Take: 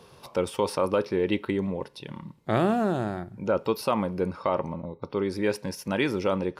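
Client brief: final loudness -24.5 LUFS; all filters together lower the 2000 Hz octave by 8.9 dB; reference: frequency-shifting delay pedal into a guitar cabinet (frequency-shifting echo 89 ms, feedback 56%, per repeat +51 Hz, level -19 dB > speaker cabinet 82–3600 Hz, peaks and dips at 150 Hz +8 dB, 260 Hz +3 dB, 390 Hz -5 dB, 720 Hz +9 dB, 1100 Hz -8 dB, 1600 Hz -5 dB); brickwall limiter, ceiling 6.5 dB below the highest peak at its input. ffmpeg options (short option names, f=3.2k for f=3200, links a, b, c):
-filter_complex "[0:a]equalizer=f=2k:t=o:g=-8.5,alimiter=limit=-18.5dB:level=0:latency=1,asplit=6[a][b][c][d][e][f];[b]adelay=89,afreqshift=51,volume=-19dB[g];[c]adelay=178,afreqshift=102,volume=-24dB[h];[d]adelay=267,afreqshift=153,volume=-29.1dB[i];[e]adelay=356,afreqshift=204,volume=-34.1dB[j];[f]adelay=445,afreqshift=255,volume=-39.1dB[k];[a][g][h][i][j][k]amix=inputs=6:normalize=0,highpass=82,equalizer=f=150:t=q:w=4:g=8,equalizer=f=260:t=q:w=4:g=3,equalizer=f=390:t=q:w=4:g=-5,equalizer=f=720:t=q:w=4:g=9,equalizer=f=1.1k:t=q:w=4:g=-8,equalizer=f=1.6k:t=q:w=4:g=-5,lowpass=f=3.6k:w=0.5412,lowpass=f=3.6k:w=1.3066,volume=5.5dB"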